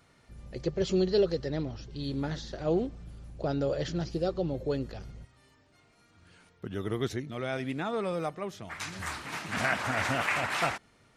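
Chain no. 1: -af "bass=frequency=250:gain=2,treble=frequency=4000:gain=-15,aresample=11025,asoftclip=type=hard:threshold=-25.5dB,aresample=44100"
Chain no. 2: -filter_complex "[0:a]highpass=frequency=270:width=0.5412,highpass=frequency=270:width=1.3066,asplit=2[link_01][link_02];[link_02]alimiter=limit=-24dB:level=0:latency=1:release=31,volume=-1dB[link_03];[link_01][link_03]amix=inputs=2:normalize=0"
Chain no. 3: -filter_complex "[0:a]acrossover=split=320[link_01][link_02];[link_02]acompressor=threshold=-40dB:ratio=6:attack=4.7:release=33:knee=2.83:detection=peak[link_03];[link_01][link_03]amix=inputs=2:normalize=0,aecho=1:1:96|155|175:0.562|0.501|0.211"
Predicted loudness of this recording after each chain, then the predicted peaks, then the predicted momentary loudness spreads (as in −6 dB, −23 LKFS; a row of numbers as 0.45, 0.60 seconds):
−33.0, −28.5, −34.5 LKFS; −21.5, −11.5, −18.0 dBFS; 10, 11, 10 LU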